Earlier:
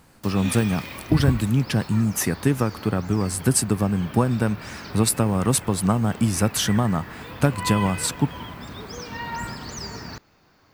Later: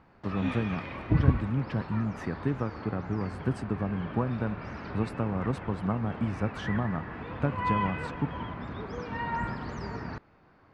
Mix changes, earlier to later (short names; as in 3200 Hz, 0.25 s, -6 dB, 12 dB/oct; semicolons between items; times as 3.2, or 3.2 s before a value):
speech -9.0 dB; master: add LPF 1900 Hz 12 dB/oct